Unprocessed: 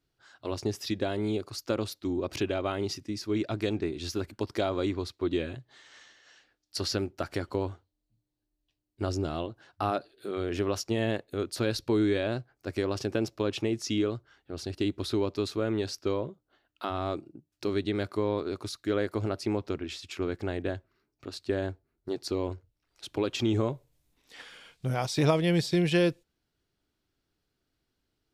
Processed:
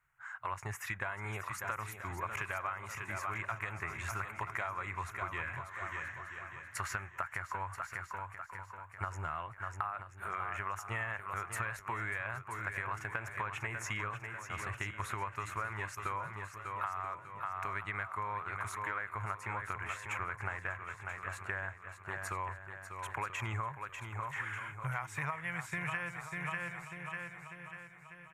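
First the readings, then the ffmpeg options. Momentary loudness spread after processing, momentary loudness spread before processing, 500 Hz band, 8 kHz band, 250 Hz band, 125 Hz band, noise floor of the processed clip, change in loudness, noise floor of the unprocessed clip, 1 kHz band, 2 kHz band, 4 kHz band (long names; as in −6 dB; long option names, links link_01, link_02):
6 LU, 12 LU, −18.5 dB, −5.5 dB, −21.5 dB, −9.0 dB, −54 dBFS, −8.5 dB, −82 dBFS, +1.5 dB, +4.0 dB, −16.0 dB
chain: -filter_complex "[0:a]firequalizer=gain_entry='entry(140,0);entry(260,-21);entry(990,15);entry(2100,15);entry(3300,-9);entry(4700,-19);entry(6800,3)':delay=0.05:min_phase=1,asplit=2[link_01][link_02];[link_02]aecho=0:1:594|1188|1782|2376|2970:0.299|0.128|0.0552|0.0237|0.0102[link_03];[link_01][link_03]amix=inputs=2:normalize=0,acompressor=threshold=-31dB:ratio=16,asplit=2[link_04][link_05];[link_05]aecho=0:1:982:0.266[link_06];[link_04][link_06]amix=inputs=2:normalize=0,volume=-3dB"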